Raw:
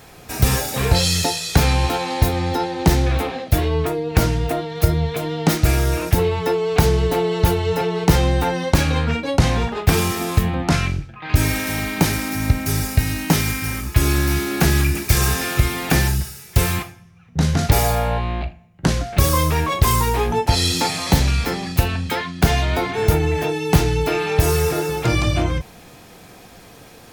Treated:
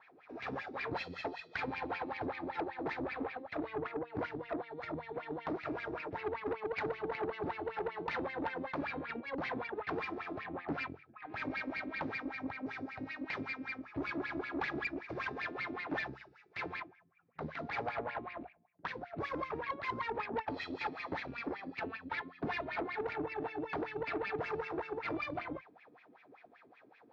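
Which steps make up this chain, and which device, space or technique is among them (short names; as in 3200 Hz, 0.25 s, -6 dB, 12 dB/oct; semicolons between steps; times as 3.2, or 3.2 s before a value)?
wah-wah guitar rig (wah 5.2 Hz 270–2400 Hz, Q 6.2; tube stage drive 29 dB, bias 0.65; speaker cabinet 89–4300 Hz, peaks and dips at 190 Hz -5 dB, 350 Hz -3 dB, 540 Hz -3 dB, 3000 Hz -5 dB)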